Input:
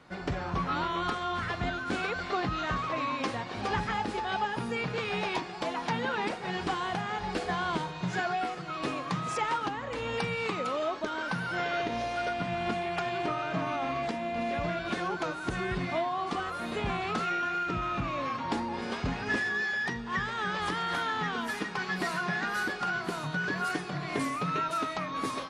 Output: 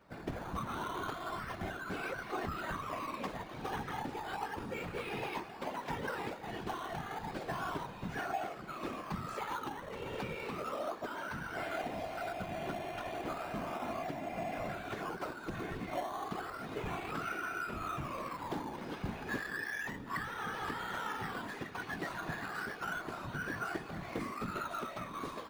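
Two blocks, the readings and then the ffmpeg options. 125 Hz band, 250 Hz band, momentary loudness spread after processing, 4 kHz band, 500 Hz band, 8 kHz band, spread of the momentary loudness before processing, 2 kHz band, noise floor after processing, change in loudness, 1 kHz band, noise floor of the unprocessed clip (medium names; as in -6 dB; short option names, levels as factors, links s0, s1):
-8.0 dB, -7.5 dB, 3 LU, -10.5 dB, -7.0 dB, -7.0 dB, 3 LU, -8.5 dB, -47 dBFS, -8.0 dB, -8.0 dB, -39 dBFS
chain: -filter_complex "[0:a]bass=f=250:g=-1,treble=f=4000:g=-7,afftfilt=real='hypot(re,im)*cos(2*PI*random(0))':imag='hypot(re,im)*sin(2*PI*random(1))':win_size=512:overlap=0.75,asplit=2[s0][s1];[s1]acrusher=samples=12:mix=1:aa=0.000001:lfo=1:lforange=12:lforate=0.33,volume=0.355[s2];[s0][s2]amix=inputs=2:normalize=0,volume=0.668"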